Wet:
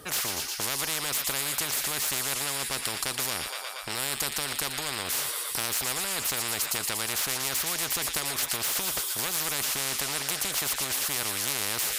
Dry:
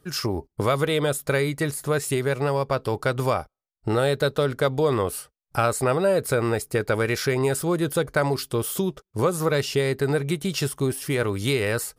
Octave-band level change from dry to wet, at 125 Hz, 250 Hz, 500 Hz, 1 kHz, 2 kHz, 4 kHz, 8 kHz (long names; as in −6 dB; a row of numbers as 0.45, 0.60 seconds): −18.0, −15.5, −18.0, −7.0, −3.0, +4.5, +7.0 decibels